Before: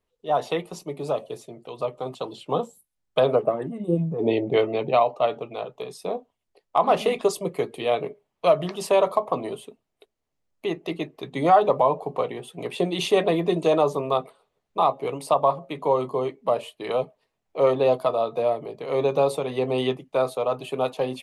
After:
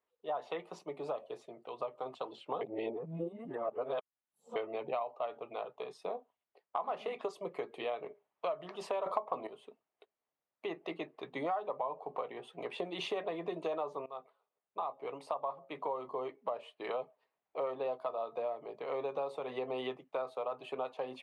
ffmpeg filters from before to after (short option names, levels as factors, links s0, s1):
-filter_complex "[0:a]asplit=6[s0][s1][s2][s3][s4][s5];[s0]atrim=end=2.612[s6];[s1]atrim=start=2.608:end=4.562,asetpts=PTS-STARTPTS,areverse[s7];[s2]atrim=start=4.558:end=9.062[s8];[s3]atrim=start=9.058:end=9.472,asetpts=PTS-STARTPTS,volume=3.76[s9];[s4]atrim=start=9.468:end=14.06,asetpts=PTS-STARTPTS,afade=t=out:st=4.588:d=0.004:c=hsin:silence=0.1[s10];[s5]atrim=start=14.06,asetpts=PTS-STARTPTS,afade=t=in:d=2.43:c=qsin:silence=0.1[s11];[s6][s7]acrossfade=d=0.004:c1=hsin:c2=hsin[s12];[s12][s8]acrossfade=d=0.004:c1=hsin:c2=hsin[s13];[s13][s9]acrossfade=d=0.004:c1=hsin:c2=hsin[s14];[s10][s11]concat=n=2:v=0:a=1[s15];[s14][s15]acrossfade=d=0.004:c1=hsin:c2=hsin,lowpass=1100,aderivative,acompressor=threshold=0.00282:ratio=4,volume=6.31"